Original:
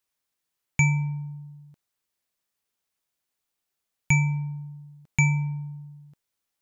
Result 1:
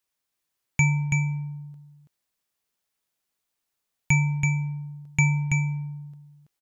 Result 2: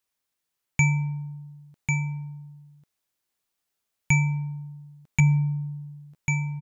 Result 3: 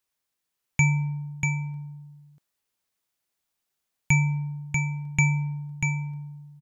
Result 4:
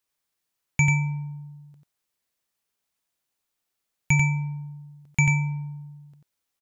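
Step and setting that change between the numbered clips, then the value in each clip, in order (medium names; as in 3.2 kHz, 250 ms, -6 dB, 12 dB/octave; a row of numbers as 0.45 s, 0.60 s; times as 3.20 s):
delay, time: 330 ms, 1095 ms, 640 ms, 91 ms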